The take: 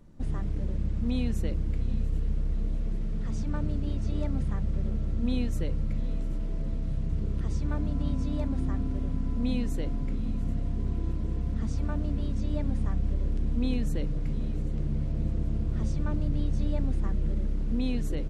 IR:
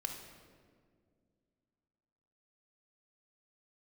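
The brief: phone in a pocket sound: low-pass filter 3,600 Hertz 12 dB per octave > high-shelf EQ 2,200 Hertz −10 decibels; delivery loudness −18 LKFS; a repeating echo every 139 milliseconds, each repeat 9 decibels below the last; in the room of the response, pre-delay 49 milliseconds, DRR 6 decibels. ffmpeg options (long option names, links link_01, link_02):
-filter_complex "[0:a]aecho=1:1:139|278|417|556:0.355|0.124|0.0435|0.0152,asplit=2[link_01][link_02];[1:a]atrim=start_sample=2205,adelay=49[link_03];[link_02][link_03]afir=irnorm=-1:irlink=0,volume=-6dB[link_04];[link_01][link_04]amix=inputs=2:normalize=0,lowpass=3600,highshelf=frequency=2200:gain=-10,volume=10.5dB"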